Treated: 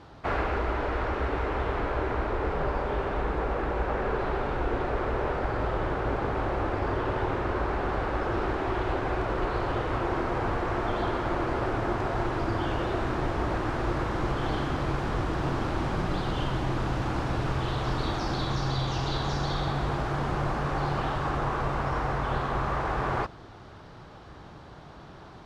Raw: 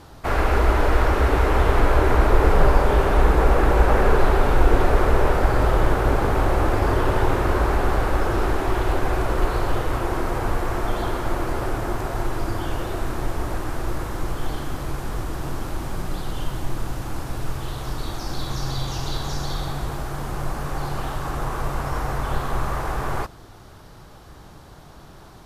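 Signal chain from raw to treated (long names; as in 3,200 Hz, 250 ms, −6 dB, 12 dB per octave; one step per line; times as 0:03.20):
low-pass filter 3,800 Hz 12 dB per octave
speech leveller
high-pass filter 77 Hz 6 dB per octave
level −4.5 dB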